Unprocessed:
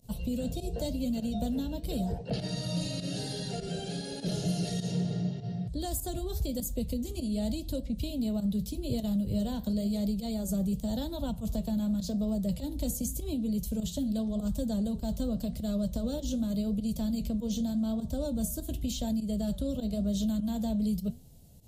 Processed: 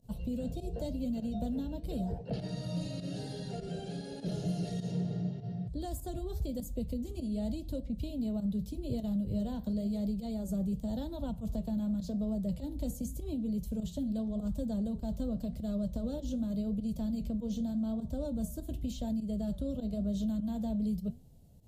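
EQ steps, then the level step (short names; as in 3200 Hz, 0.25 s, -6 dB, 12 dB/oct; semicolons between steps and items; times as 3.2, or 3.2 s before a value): high shelf 2200 Hz -9.5 dB; -3.0 dB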